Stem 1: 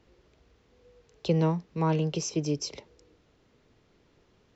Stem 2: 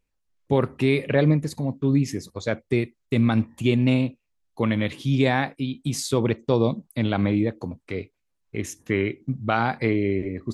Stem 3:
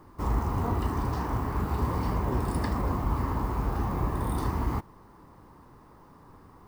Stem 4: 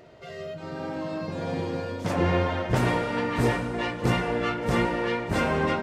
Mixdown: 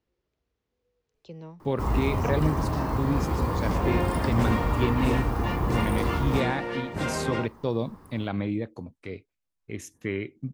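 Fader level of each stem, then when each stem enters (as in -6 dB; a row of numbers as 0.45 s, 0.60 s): -18.0 dB, -7.0 dB, +1.5 dB, -5.0 dB; 0.00 s, 1.15 s, 1.60 s, 1.65 s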